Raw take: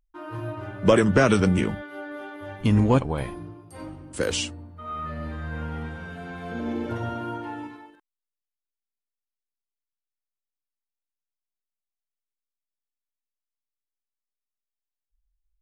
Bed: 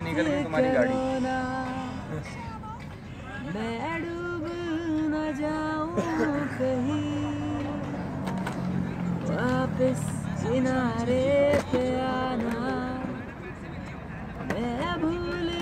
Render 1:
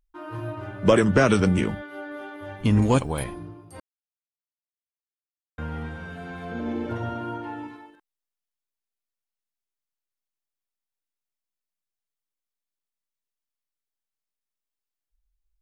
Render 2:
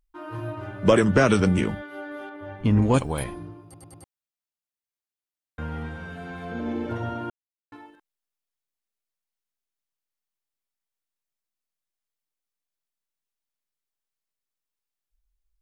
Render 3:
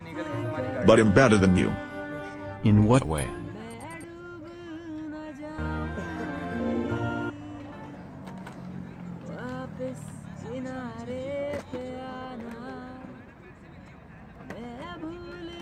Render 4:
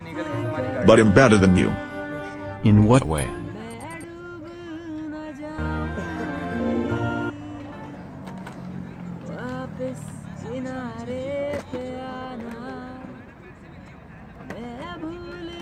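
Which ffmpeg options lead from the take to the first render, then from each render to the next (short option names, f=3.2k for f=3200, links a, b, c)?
-filter_complex "[0:a]asettb=1/sr,asplit=3[a][b][c];[a]atrim=end=2.824[d];[b]atrim=start=2.82:end=3.24,asetpts=PTS-STARTPTS,afade=t=in:d=0.004:c=qsin,afade=t=out:st=0.416:d=0.004:c=qsin,aemphasis=mode=production:type=75fm[e];[c]atrim=start=3.236[f];[d][e]acrossfade=d=0.004:c1=hsin:c2=qsin[g];[g][f]acrossfade=d=0.004:c1=qsin:c2=hsin,asettb=1/sr,asplit=3[h][i][j];[h]atrim=end=6.454[k];[i]atrim=start=6.45:end=7.68,asetpts=PTS-STARTPTS,afade=t=in:d=0.004:c=qsin,afade=t=out:st=1.226:d=0.004:c=qsin,highshelf=f=5.5k:g=-6[l];[j]atrim=start=7.676[m];[k][l]acrossfade=d=0.004:c1=hsin:c2=qsin[n];[n][m]acrossfade=d=0.004:c1=qsin:c2=hsin,asplit=3[o][p][q];[o]atrim=end=3.8,asetpts=PTS-STARTPTS,afade=t=out:st=3.796:d=0.004:c=hsin[r];[p]atrim=start=3.8:end=5.58,asetpts=PTS-STARTPTS,volume=0[s];[q]atrim=start=5.58,asetpts=PTS-STARTPTS,afade=t=in:d=0.004:c=hsin[t];[r][s][t]concat=n=3:v=0:a=1"
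-filter_complex "[0:a]asettb=1/sr,asplit=3[a][b][c];[a]atrim=end=2.294[d];[b]atrim=start=2.29:end=2.94,asetpts=PTS-STARTPTS,afade=t=in:d=0.004:c=qsin,afade=t=out:st=0.646:d=0.004:c=qsin,lowpass=f=1.9k:p=1[e];[c]atrim=start=2.936[f];[d][e]acrossfade=d=0.004:c1=hsin:c2=qsin[g];[g][f]acrossfade=d=0.004:c1=qsin:c2=hsin,asplit=7[h][i][j][k][l][m][n];[h]atrim=end=3.742[o];[i]atrim=start=3.638:end=3.742[p];[j]atrim=start=3.638:end=3.742[q];[k]atrim=start=3.638:end=3.742[r];[l]atrim=start=4.038:end=7.3,asetpts=PTS-STARTPTS,afade=t=out:st=3.258:d=0.004:c=hsin[s];[m]atrim=start=7.3:end=7.72,asetpts=PTS-STARTPTS,volume=0[t];[n]atrim=start=7.72,asetpts=PTS-STARTPTS,afade=t=in:d=0.004:c=hsin[u];[o][p]acrossfade=d=0.004:c1=hsin:c2=hsin[v];[v][q]acrossfade=d=0.004:c1=hsin:c2=hsin[w];[w][r]acrossfade=d=0.004:c1=hsin:c2=hsin[x];[s][t][u]concat=n=3:v=0:a=1[y];[x][y]acrossfade=d=0.004:c1=hsin:c2=hsin"
-filter_complex "[1:a]volume=-10dB[a];[0:a][a]amix=inputs=2:normalize=0"
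-af "volume=4.5dB,alimiter=limit=-2dB:level=0:latency=1"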